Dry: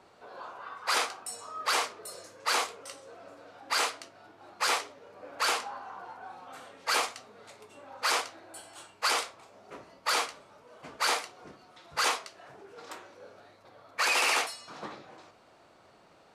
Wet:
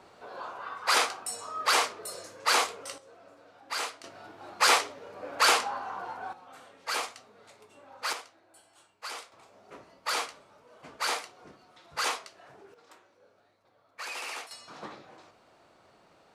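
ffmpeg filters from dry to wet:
ffmpeg -i in.wav -af "asetnsamples=nb_out_samples=441:pad=0,asendcmd='2.98 volume volume -5dB;4.04 volume volume 6dB;6.33 volume volume -4dB;8.13 volume volume -12dB;9.32 volume volume -2.5dB;12.74 volume volume -12dB;14.51 volume volume -1.5dB',volume=3.5dB" out.wav

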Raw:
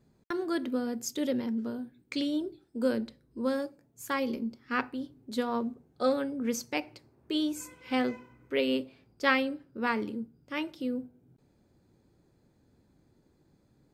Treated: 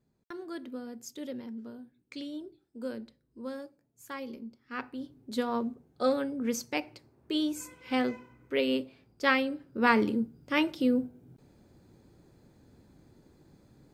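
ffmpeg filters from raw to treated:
ffmpeg -i in.wav -af "volume=7dB,afade=type=in:start_time=4.72:duration=0.46:silence=0.354813,afade=type=in:start_time=9.48:duration=0.5:silence=0.446684" out.wav

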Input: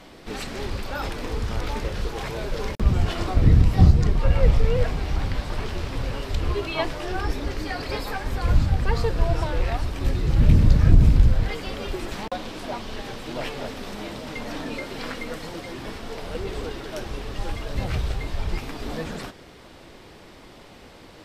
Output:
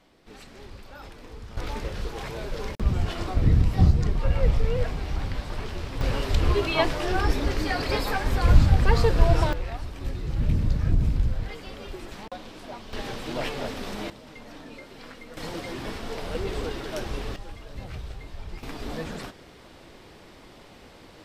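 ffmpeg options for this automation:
ffmpeg -i in.wav -af "asetnsamples=nb_out_samples=441:pad=0,asendcmd='1.57 volume volume -4dB;6.01 volume volume 3dB;9.53 volume volume -8dB;12.93 volume volume 0.5dB;14.1 volume volume -11.5dB;15.37 volume volume 0.5dB;17.36 volume volume -11dB;18.63 volume volume -2.5dB',volume=-14dB" out.wav

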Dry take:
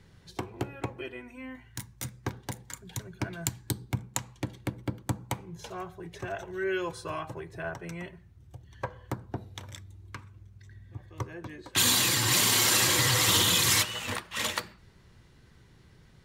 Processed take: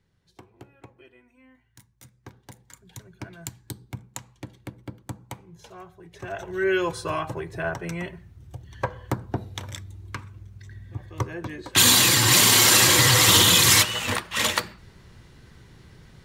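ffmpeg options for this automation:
ffmpeg -i in.wav -af "volume=7.5dB,afade=type=in:start_time=2.08:duration=0.94:silence=0.375837,afade=type=in:start_time=6.1:duration=0.56:silence=0.237137" out.wav

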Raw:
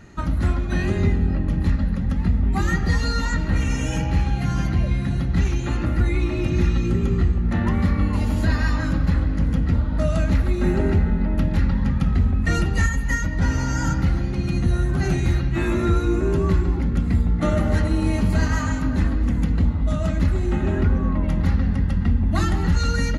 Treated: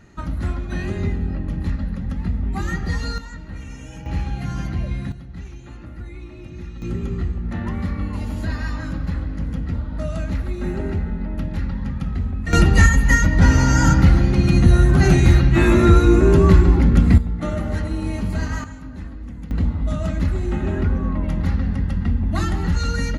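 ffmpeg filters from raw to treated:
ffmpeg -i in.wav -af "asetnsamples=nb_out_samples=441:pad=0,asendcmd='3.18 volume volume -13dB;4.06 volume volume -4dB;5.12 volume volume -15dB;6.82 volume volume -5dB;12.53 volume volume 7.5dB;17.18 volume volume -4dB;18.64 volume volume -13dB;19.51 volume volume -1dB',volume=-3.5dB" out.wav

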